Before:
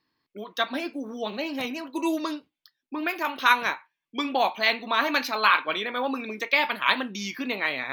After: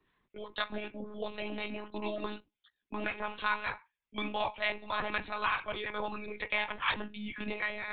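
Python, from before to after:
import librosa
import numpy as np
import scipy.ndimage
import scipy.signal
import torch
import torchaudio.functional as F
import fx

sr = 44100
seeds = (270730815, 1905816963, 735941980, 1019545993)

y = fx.harmonic_tremolo(x, sr, hz=4.0, depth_pct=50, crossover_hz=940.0)
y = fx.lpc_monotone(y, sr, seeds[0], pitch_hz=210.0, order=16)
y = fx.band_squash(y, sr, depth_pct=40)
y = F.gain(torch.from_numpy(y), -6.5).numpy()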